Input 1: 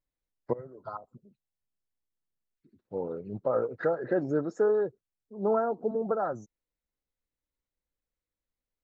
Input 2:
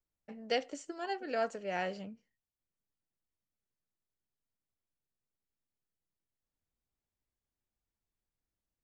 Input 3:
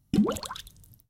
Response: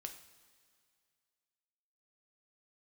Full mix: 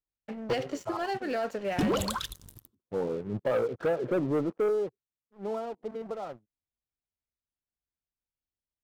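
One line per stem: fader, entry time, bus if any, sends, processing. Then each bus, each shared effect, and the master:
4.49 s -7.5 dB -> 5.20 s -19 dB, 0.00 s, no send, steep low-pass 1.3 kHz 36 dB/octave
-2.5 dB, 0.00 s, no send, low-pass 5.3 kHz 12 dB/octave; de-hum 183.6 Hz, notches 3; peak limiter -29.5 dBFS, peak gain reduction 9 dB
-7.0 dB, 1.65 s, send -13.5 dB, peaking EQ 210 Hz -9 dB 0.49 oct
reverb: on, pre-delay 3 ms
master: high-pass 51 Hz 6 dB/octave; bass shelf 82 Hz +6.5 dB; waveshaping leveller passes 3

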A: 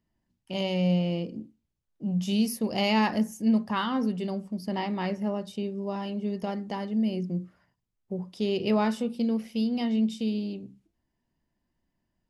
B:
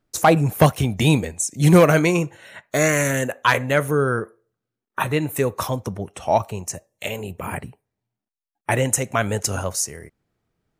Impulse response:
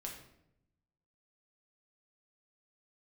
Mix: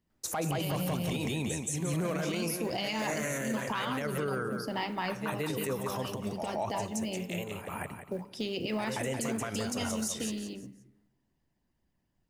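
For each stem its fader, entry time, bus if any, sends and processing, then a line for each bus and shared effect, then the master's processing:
+2.5 dB, 0.00 s, send -5.5 dB, no echo send, harmonic-percussive split harmonic -13 dB; short-mantissa float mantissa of 4-bit
-2.0 dB, 0.10 s, send -19.5 dB, echo send -6.5 dB, bass shelf 110 Hz -7 dB; peak limiter -9 dBFS, peak gain reduction 7.5 dB; auto duck -20 dB, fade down 1.95 s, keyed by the first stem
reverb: on, RT60 0.80 s, pre-delay 5 ms
echo: feedback delay 176 ms, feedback 34%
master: peak limiter -23.5 dBFS, peak gain reduction 10.5 dB

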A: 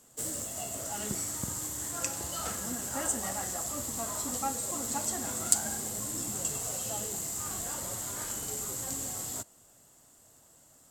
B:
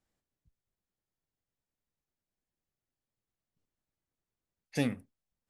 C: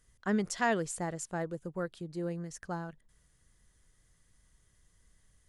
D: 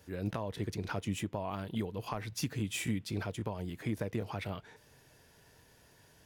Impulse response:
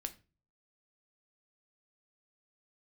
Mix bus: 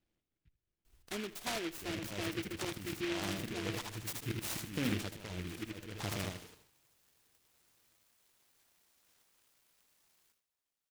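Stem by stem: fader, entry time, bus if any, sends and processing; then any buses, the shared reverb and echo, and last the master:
-15.0 dB, 0.90 s, bus A, no send, echo send -23 dB, steep high-pass 1.5 kHz 96 dB/octave; compression 6:1, threshold -39 dBFS, peak gain reduction 19.5 dB
+1.0 dB, 0.00 s, bus A, no send, echo send -16 dB, none
-3.5 dB, 0.85 s, no bus, no send, echo send -17.5 dB, comb 2.9 ms, depth 59%; compression 1.5:1, threshold -46 dBFS, peak gain reduction 8.5 dB
-1.0 dB, 1.70 s, no bus, no send, echo send -3.5 dB, gate with hold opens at -48 dBFS; slow attack 191 ms; auto duck -17 dB, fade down 0.20 s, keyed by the second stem
bus A: 0.0 dB, low-pass 1.3 kHz 6 dB/octave; peak limiter -25.5 dBFS, peak gain reduction 9 dB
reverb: none
echo: feedback delay 78 ms, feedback 28%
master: peaking EQ 330 Hz +8.5 dB 0.2 oct; delay time shaken by noise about 2.2 kHz, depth 0.22 ms

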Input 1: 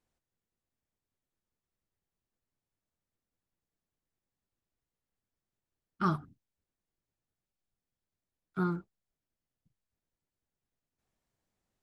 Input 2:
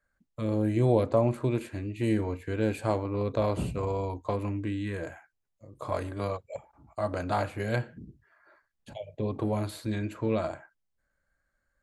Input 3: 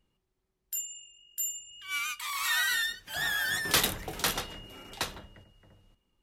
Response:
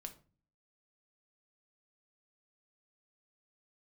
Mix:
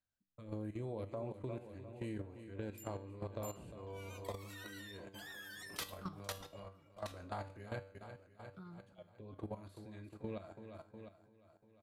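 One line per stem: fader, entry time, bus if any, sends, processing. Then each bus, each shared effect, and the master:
-4.0 dB, 0.00 s, no send, echo send -20 dB, fifteen-band graphic EQ 100 Hz +9 dB, 400 Hz -6 dB, 1.6 kHz -4 dB, 4 kHz +6 dB
+1.5 dB, 0.00 s, no send, echo send -10.5 dB, upward expansion 1.5:1, over -46 dBFS
-5.0 dB, 2.05 s, no send, no echo send, reverb removal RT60 1.5 s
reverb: none
echo: feedback delay 352 ms, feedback 59%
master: level held to a coarse grid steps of 15 dB; feedback comb 97 Hz, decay 0.4 s, harmonics all, mix 60%; compression 3:1, threshold -40 dBFS, peak gain reduction 6.5 dB

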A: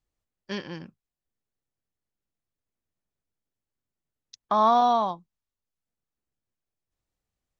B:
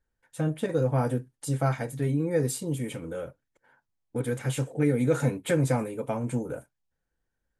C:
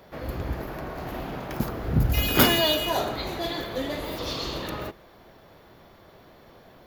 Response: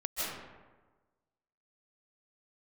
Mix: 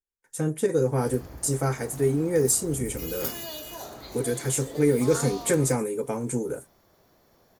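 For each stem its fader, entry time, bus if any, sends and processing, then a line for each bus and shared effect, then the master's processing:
-20.0 dB, 0.50 s, no send, none
+0.5 dB, 0.00 s, no send, graphic EQ with 31 bands 100 Hz -11 dB, 400 Hz +11 dB, 630 Hz -6 dB, 2 kHz +3 dB; gate with hold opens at -53 dBFS
-10.5 dB, 0.85 s, no send, compression 2:1, threshold -28 dBFS, peak gain reduction 8.5 dB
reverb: none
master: resonant high shelf 4.6 kHz +9.5 dB, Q 1.5

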